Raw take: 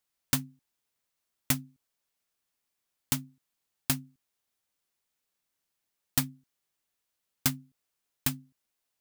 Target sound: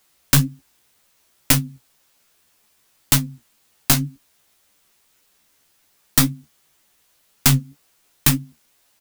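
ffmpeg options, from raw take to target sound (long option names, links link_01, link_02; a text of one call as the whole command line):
ffmpeg -i in.wav -filter_complex "[0:a]flanger=delay=8.7:depth=8.8:regen=35:speed=1.9:shape=triangular,aeval=exprs='(tanh(20*val(0)+0.6)-tanh(0.6))/20':channel_layout=same,asplit=2[link_01][link_02];[link_02]adelay=14,volume=-7.5dB[link_03];[link_01][link_03]amix=inputs=2:normalize=0,alimiter=level_in=28dB:limit=-1dB:release=50:level=0:latency=1,volume=-1dB" out.wav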